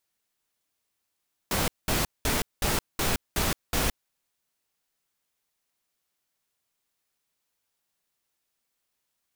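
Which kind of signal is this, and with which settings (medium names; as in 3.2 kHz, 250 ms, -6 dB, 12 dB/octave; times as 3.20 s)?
noise bursts pink, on 0.17 s, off 0.20 s, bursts 7, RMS -25.5 dBFS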